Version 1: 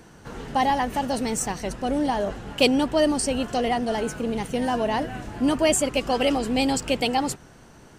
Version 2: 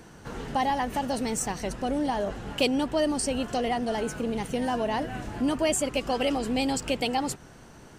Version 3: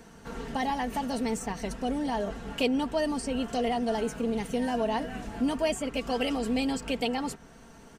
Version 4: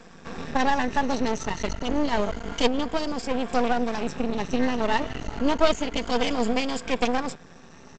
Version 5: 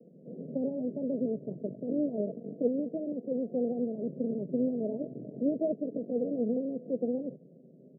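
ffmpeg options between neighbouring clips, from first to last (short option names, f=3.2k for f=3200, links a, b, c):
-af "acompressor=threshold=-30dB:ratio=1.5"
-filter_complex "[0:a]aecho=1:1:4.4:0.53,acrossover=split=3300[a][b];[b]alimiter=level_in=3dB:limit=-24dB:level=0:latency=1:release=292,volume=-3dB[c];[a][c]amix=inputs=2:normalize=0,volume=-3dB"
-af "afftfilt=real='re*pow(10,16/40*sin(2*PI*(1.8*log(max(b,1)*sr/1024/100)/log(2)-(0.28)*(pts-256)/sr)))':imag='im*pow(10,16/40*sin(2*PI*(1.8*log(max(b,1)*sr/1024/100)/log(2)-(0.28)*(pts-256)/sr)))':win_size=1024:overlap=0.75,aresample=16000,aeval=exprs='max(val(0),0)':c=same,aresample=44100,volume=5.5dB"
-af "asuperpass=centerf=280:order=20:qfactor=0.57,volume=-4dB"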